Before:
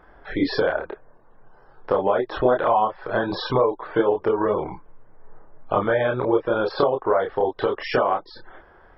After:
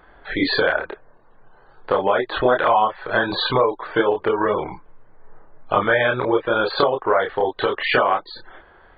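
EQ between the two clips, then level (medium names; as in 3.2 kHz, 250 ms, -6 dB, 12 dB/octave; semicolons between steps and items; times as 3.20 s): dynamic bell 1.9 kHz, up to +6 dB, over -37 dBFS, Q 0.96; brick-wall FIR low-pass 4.7 kHz; treble shelf 2.7 kHz +12 dB; 0.0 dB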